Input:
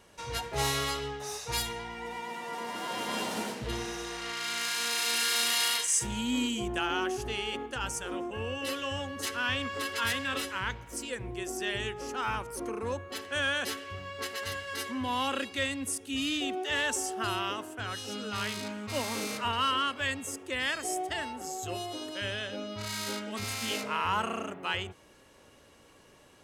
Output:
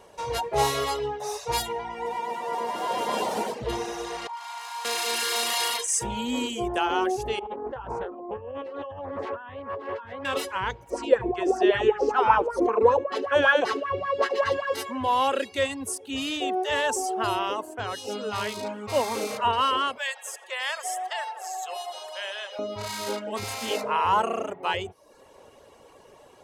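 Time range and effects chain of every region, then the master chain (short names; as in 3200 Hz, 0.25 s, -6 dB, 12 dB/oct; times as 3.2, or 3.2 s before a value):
4.27–4.85 ladder high-pass 800 Hz, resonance 75% + doubler 15 ms -7.5 dB
7.39–10.25 LPF 1300 Hz + negative-ratio compressor -42 dBFS + Doppler distortion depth 0.36 ms
10.9–14.74 LPF 5000 Hz + feedback echo 72 ms, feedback 27%, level -10 dB + LFO bell 5.2 Hz 300–1600 Hz +13 dB
19.98–22.59 Bessel high-pass 950 Hz, order 8 + tape echo 83 ms, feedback 79%, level -11 dB, low-pass 5500 Hz
whole clip: reverb removal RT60 0.59 s; band shelf 640 Hz +9 dB; gain +2 dB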